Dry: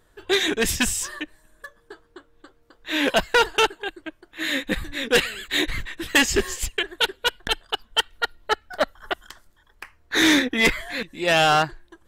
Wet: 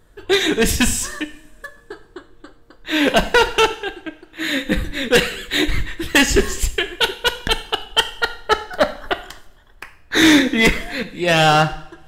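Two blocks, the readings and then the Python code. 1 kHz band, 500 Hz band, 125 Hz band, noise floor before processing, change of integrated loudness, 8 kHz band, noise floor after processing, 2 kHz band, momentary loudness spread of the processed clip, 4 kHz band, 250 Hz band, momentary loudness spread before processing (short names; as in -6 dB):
+4.5 dB, +5.5 dB, +10.0 dB, -61 dBFS, +4.5 dB, +3.5 dB, -49 dBFS, +4.0 dB, 13 LU, +4.0 dB, +7.0 dB, 14 LU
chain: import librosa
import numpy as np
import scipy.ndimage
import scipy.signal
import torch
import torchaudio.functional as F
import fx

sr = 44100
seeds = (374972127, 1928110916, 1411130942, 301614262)

p1 = fx.low_shelf(x, sr, hz=320.0, db=7.0)
p2 = fx.rider(p1, sr, range_db=10, speed_s=2.0)
p3 = p1 + (p2 * 10.0 ** (0.5 / 20.0))
p4 = fx.rev_double_slope(p3, sr, seeds[0], early_s=0.62, late_s=2.7, knee_db=-27, drr_db=9.0)
y = p4 * 10.0 ** (-4.0 / 20.0)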